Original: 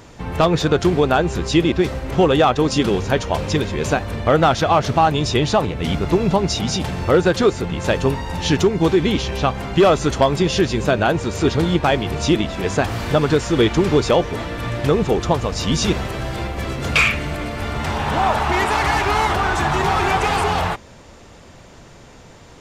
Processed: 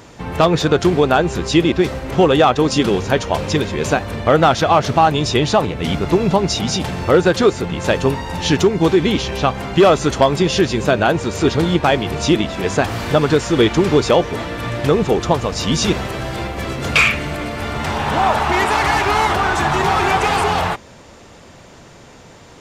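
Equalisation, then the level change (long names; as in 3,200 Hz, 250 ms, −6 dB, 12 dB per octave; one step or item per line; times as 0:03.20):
low-shelf EQ 65 Hz −9 dB
+2.5 dB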